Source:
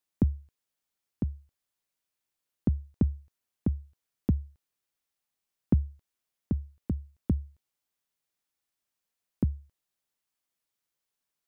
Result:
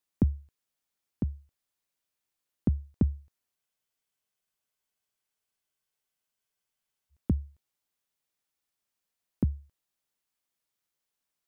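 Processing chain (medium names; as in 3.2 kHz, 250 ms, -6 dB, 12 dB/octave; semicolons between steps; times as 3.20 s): spectral freeze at 3.57 s, 3.54 s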